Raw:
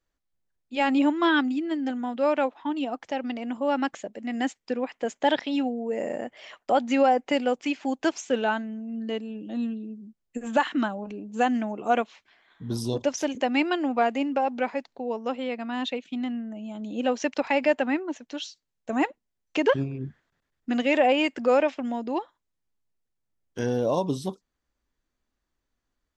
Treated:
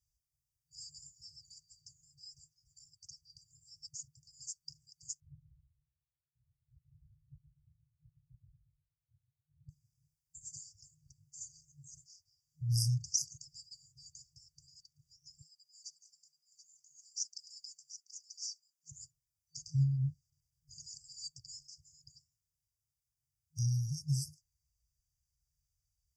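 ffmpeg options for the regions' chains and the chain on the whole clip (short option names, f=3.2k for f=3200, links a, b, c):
-filter_complex "[0:a]asettb=1/sr,asplit=3[a][b][c];[a]atrim=end=5.204[d];[b]atrim=start=5.2:end=9.69,asetpts=PTS-STARTPTS,afade=t=in:d=0.004:c=qsin,afade=t=out:st=4.486:d=0.004:c=qsin,aeval=exprs='0.112*(abs(mod(val(0)/0.112+3,4)-2)-1)':c=same,aecho=1:1:123|246|369|492:0.376|0.147|0.0572|0.0223,atrim=end_sample=198009,lowpass=f=3.3k:t=q:w=0.5098,lowpass=f=3.3k:t=q:w=0.6013,lowpass=f=3.3k:t=q:w=0.9,lowpass=f=3.3k:t=q:w=2.563,afreqshift=-3900[e];[c]atrim=start=9.686[f];[d][e]acrossfade=d=0.004:c1=hsin:c2=qsin[g];[g][f]acrossfade=d=0.004:c1=qsin:c2=hsin,asettb=1/sr,asplit=3[h][i][j];[h]atrim=end=15.414[k];[i]atrim=start=15.41:end=18.92,asetpts=PTS-STARTPTS,afade=t=in:d=0.004:c=qsin,afade=t=out:st=3.506:d=0.004:c=qsin,highpass=770,aecho=1:1:732:0.251,atrim=end_sample=154791[l];[j]atrim=start=18.916[m];[k][l]acrossfade=d=0.004:c1=hsin:c2=qsin[n];[n][m]acrossfade=d=0.004:c1=qsin:c2=hsin,afftfilt=real='re*(1-between(b*sr/4096,160,4600))':imag='im*(1-between(b*sr/4096,160,4600))':win_size=4096:overlap=0.75,highpass=52,volume=3.5dB"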